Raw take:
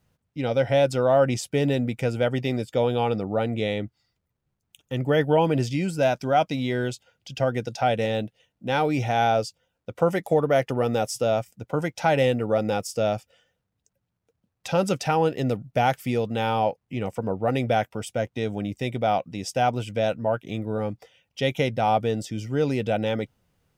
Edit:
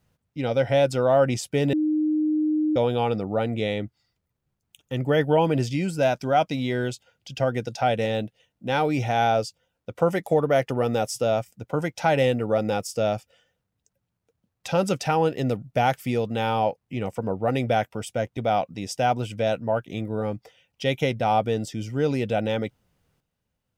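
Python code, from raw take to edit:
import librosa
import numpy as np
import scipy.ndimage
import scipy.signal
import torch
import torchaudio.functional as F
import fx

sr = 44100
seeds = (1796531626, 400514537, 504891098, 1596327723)

y = fx.edit(x, sr, fx.bleep(start_s=1.73, length_s=1.03, hz=307.0, db=-19.5),
    fx.cut(start_s=18.37, length_s=0.57), tone=tone)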